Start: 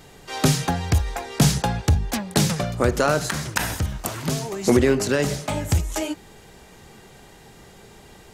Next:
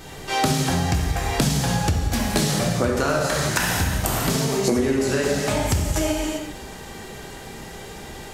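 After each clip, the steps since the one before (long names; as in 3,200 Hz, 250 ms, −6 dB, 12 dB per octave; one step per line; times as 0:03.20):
reverb whose tail is shaped and stops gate 420 ms falling, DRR −3 dB
downward compressor 6 to 1, threshold −24 dBFS, peak gain reduction 15.5 dB
level +5.5 dB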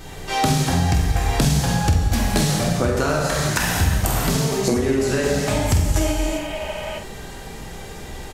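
healed spectral selection 0:06.28–0:06.96, 440–3,300 Hz before
low-shelf EQ 75 Hz +9 dB
double-tracking delay 47 ms −8.5 dB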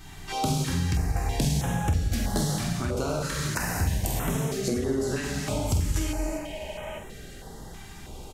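notch on a step sequencer 3.1 Hz 510–4,600 Hz
level −7 dB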